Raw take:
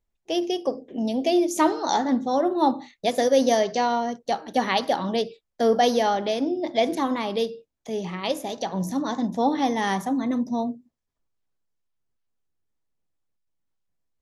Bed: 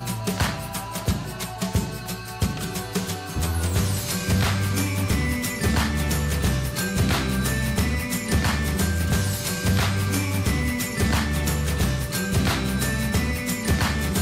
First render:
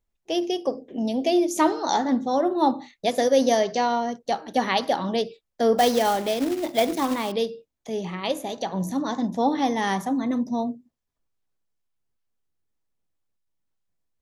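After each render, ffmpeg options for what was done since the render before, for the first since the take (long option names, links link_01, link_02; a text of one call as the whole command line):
ffmpeg -i in.wav -filter_complex "[0:a]asettb=1/sr,asplit=3[link_01][link_02][link_03];[link_01]atrim=end=5.784[link_04];[link_02]atrim=start=5.78:end=7.32,asetpts=PTS-STARTPTS,afade=type=in:duration=0.004:curve=qsin,afade=type=out:start_time=1.536:duration=0.004:curve=qsin,acrusher=bits=3:mode=log:mix=0:aa=0.000001[link_05];[link_03]atrim=start=7.316[link_06];[link_04][link_05]acrossfade=duration=0.004:curve1=hsin:curve2=qsin[link_07];[link_07][link_06]acrossfade=duration=0.004:curve1=qsin:curve2=hsin,asettb=1/sr,asplit=3[link_08][link_09][link_10];[link_08]atrim=end=8.014[link_11];[link_09]atrim=start=8.01:end=9,asetpts=PTS-STARTPTS,afade=type=in:duration=0.004:curve=qsin,afade=type=out:start_time=0.986:duration=0.004:curve=qsin,bandreject=frequency=5300:width=5.7[link_12];[link_10]atrim=start=8.996[link_13];[link_11][link_12]acrossfade=duration=0.004:curve1=hsin:curve2=qsin[link_14];[link_14][link_13]acrossfade=duration=0.004:curve1=qsin:curve2=hsin" out.wav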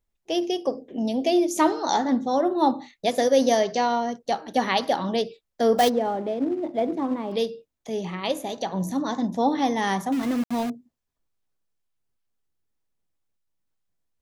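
ffmpeg -i in.wav -filter_complex "[0:a]asplit=3[link_01][link_02][link_03];[link_01]afade=type=out:start_time=5.88:duration=0.02[link_04];[link_02]bandpass=frequency=280:width_type=q:width=0.58,afade=type=in:start_time=5.88:duration=0.02,afade=type=out:start_time=7.31:duration=0.02[link_05];[link_03]afade=type=in:start_time=7.31:duration=0.02[link_06];[link_04][link_05][link_06]amix=inputs=3:normalize=0,asettb=1/sr,asplit=3[link_07][link_08][link_09];[link_07]atrim=end=10.124[link_10];[link_08]atrim=start=10.12:end=10.7,asetpts=PTS-STARTPTS,afade=type=in:duration=0.004:curve=qsin,afade=type=out:start_time=0.576:duration=0.004:curve=qsin,aeval=exprs='val(0)*gte(abs(val(0)),0.0299)':channel_layout=same[link_11];[link_09]atrim=start=10.696[link_12];[link_10][link_11]acrossfade=duration=0.004:curve1=hsin:curve2=qsin[link_13];[link_13][link_12]acrossfade=duration=0.004:curve1=qsin:curve2=hsin" out.wav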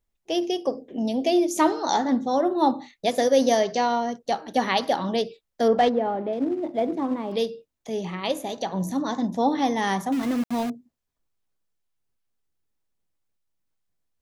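ffmpeg -i in.wav -filter_complex "[0:a]asettb=1/sr,asplit=3[link_01][link_02][link_03];[link_01]atrim=end=5.684[link_04];[link_02]atrim=start=5.68:end=6.33,asetpts=PTS-STARTPTS,afade=type=in:duration=0.004:curve=qsin,afade=type=out:start_time=0.646:duration=0.004:curve=qsin,lowpass=2900[link_05];[link_03]atrim=start=6.326[link_06];[link_04][link_05]acrossfade=duration=0.004:curve1=hsin:curve2=qsin[link_07];[link_07][link_06]acrossfade=duration=0.004:curve1=qsin:curve2=hsin" out.wav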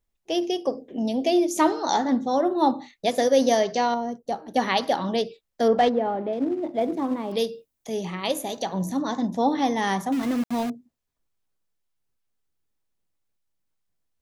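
ffmpeg -i in.wav -filter_complex "[0:a]asettb=1/sr,asplit=3[link_01][link_02][link_03];[link_01]atrim=end=3.944[link_04];[link_02]atrim=start=3.94:end=4.56,asetpts=PTS-STARTPTS,afade=type=in:duration=0.004:curve=qsin,afade=type=out:start_time=0.616:duration=0.004:curve=qsin,equalizer=frequency=3000:width=0.42:gain=-11.5[link_05];[link_03]atrim=start=4.556[link_06];[link_04][link_05]acrossfade=duration=0.004:curve1=hsin:curve2=qsin[link_07];[link_07][link_06]acrossfade=duration=0.004:curve1=qsin:curve2=hsin,asettb=1/sr,asplit=3[link_08][link_09][link_10];[link_08]atrim=end=6.814[link_11];[link_09]atrim=start=6.81:end=8.79,asetpts=PTS-STARTPTS,afade=type=in:duration=0.004:curve=qsin,afade=type=out:start_time=1.976:duration=0.004:curve=qsin,highshelf=frequency=8300:gain=11.5[link_12];[link_10]atrim=start=8.786[link_13];[link_11][link_12]acrossfade=duration=0.004:curve1=hsin:curve2=qsin[link_14];[link_14][link_13]acrossfade=duration=0.004:curve1=qsin:curve2=hsin" out.wav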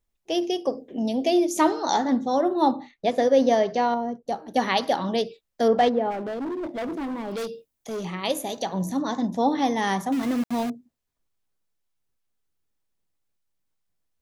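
ffmpeg -i in.wav -filter_complex "[0:a]asettb=1/sr,asplit=3[link_01][link_02][link_03];[link_01]atrim=end=2.764[link_04];[link_02]atrim=start=2.76:end=4.28,asetpts=PTS-STARTPTS,afade=type=in:duration=0.004:curve=qsin,afade=type=out:start_time=1.516:duration=0.004:curve=qsin,aemphasis=mode=reproduction:type=75fm[link_05];[link_03]atrim=start=4.276[link_06];[link_04][link_05]acrossfade=duration=0.004:curve1=hsin:curve2=qsin[link_07];[link_07][link_06]acrossfade=duration=0.004:curve1=qsin:curve2=hsin,asplit=3[link_08][link_09][link_10];[link_08]afade=type=out:start_time=6.1:duration=0.02[link_11];[link_09]asoftclip=type=hard:threshold=-27.5dB,afade=type=in:start_time=6.1:duration=0.02,afade=type=out:start_time=8.04:duration=0.02[link_12];[link_10]afade=type=in:start_time=8.04:duration=0.02[link_13];[link_11][link_12][link_13]amix=inputs=3:normalize=0" out.wav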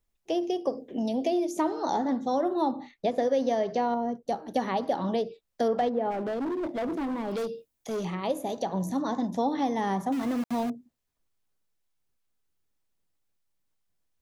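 ffmpeg -i in.wav -filter_complex "[0:a]acrossover=split=600|1200[link_01][link_02][link_03];[link_01]acompressor=threshold=-27dB:ratio=4[link_04];[link_02]acompressor=threshold=-31dB:ratio=4[link_05];[link_03]acompressor=threshold=-44dB:ratio=4[link_06];[link_04][link_05][link_06]amix=inputs=3:normalize=0" out.wav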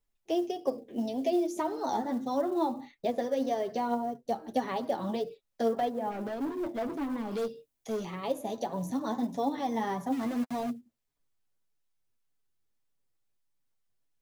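ffmpeg -i in.wav -af "flanger=delay=6.9:depth=2.3:regen=15:speed=1.7:shape=sinusoidal,acrusher=bits=8:mode=log:mix=0:aa=0.000001" out.wav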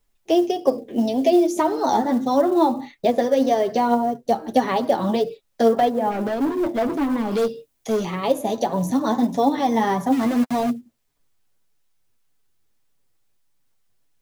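ffmpeg -i in.wav -af "volume=11.5dB" out.wav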